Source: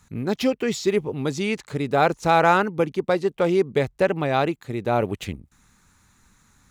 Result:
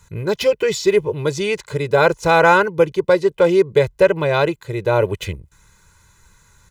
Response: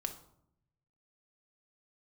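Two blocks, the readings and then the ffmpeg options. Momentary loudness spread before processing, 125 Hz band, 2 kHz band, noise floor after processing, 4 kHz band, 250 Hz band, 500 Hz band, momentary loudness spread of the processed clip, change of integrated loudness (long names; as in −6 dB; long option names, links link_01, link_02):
9 LU, +4.0 dB, +7.0 dB, −56 dBFS, +5.5 dB, +1.0 dB, +7.0 dB, 9 LU, +5.5 dB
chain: -af "aecho=1:1:2:0.89,volume=3dB"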